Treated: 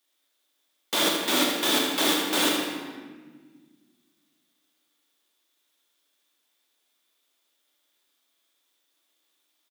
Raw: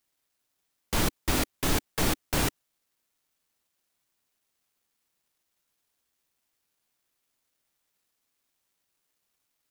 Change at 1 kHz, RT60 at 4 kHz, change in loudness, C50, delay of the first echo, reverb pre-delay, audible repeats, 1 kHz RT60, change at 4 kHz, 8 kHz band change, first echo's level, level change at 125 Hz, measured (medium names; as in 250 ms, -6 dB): +5.0 dB, 1.1 s, +5.0 dB, 1.0 dB, 79 ms, 3 ms, 2, 1.4 s, +10.5 dB, +4.0 dB, -6.5 dB, -14.0 dB